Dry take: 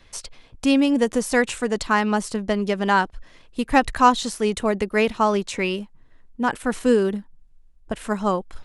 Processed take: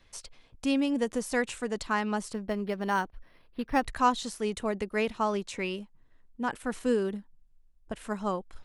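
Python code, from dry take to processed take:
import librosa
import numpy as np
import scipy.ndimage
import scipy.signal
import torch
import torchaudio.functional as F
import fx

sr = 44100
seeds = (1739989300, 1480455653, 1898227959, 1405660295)

y = fx.resample_linear(x, sr, factor=6, at=(2.33, 3.86))
y = y * 10.0 ** (-9.0 / 20.0)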